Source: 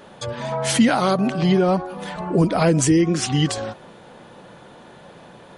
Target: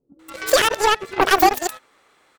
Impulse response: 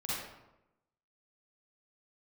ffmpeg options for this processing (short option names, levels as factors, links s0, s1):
-filter_complex "[0:a]acrossover=split=160[s0][s1];[s1]adelay=450[s2];[s0][s2]amix=inputs=2:normalize=0,asetrate=103194,aresample=44100,aeval=exprs='0.596*(cos(1*acos(clip(val(0)/0.596,-1,1)))-cos(1*PI/2))+0.075*(cos(7*acos(clip(val(0)/0.596,-1,1)))-cos(7*PI/2))':c=same,volume=1.68"